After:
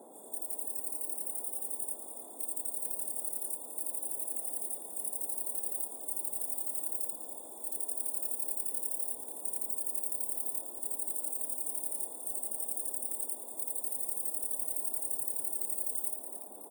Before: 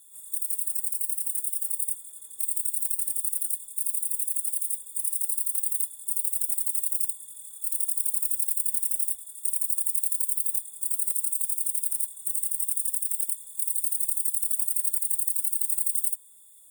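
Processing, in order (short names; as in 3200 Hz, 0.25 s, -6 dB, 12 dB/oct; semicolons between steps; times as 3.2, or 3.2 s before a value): bin magnitudes rounded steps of 15 dB; band noise 230–810 Hz -46 dBFS; frequency-shifting echo 0.284 s, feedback 50%, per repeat +98 Hz, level -9 dB; gain -8.5 dB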